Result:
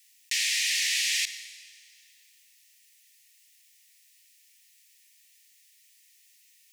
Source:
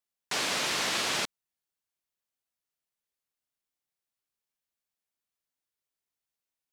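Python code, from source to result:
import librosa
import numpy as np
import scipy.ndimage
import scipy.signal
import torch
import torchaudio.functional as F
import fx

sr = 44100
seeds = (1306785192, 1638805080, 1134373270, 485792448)

y = fx.leveller(x, sr, passes=2)
y = scipy.signal.sosfilt(scipy.signal.cheby1(6, 3, 1800.0, 'highpass', fs=sr, output='sos'), y)
y = fx.rev_double_slope(y, sr, seeds[0], early_s=0.83, late_s=2.2, knee_db=-27, drr_db=20.0)
y = fx.env_flatten(y, sr, amount_pct=50)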